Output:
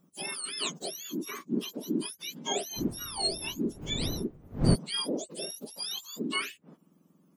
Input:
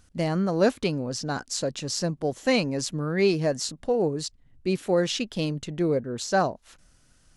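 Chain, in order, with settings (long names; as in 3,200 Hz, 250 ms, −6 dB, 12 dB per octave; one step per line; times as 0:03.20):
frequency axis turned over on the octave scale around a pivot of 1,300 Hz
0:02.76–0:04.74: wind on the microphone 240 Hz −27 dBFS
level −6 dB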